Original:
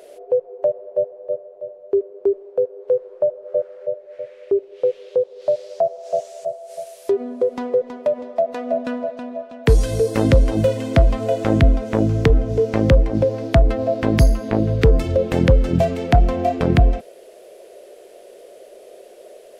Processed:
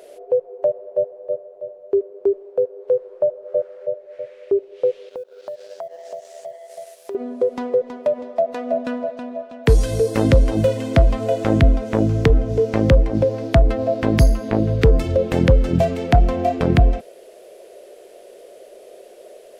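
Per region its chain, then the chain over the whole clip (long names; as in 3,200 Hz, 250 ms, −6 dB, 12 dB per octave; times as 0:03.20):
0:05.09–0:07.15: mu-law and A-law mismatch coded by A + high-pass filter 180 Hz 6 dB per octave + downward compressor 5 to 1, threshold −29 dBFS
whole clip: no processing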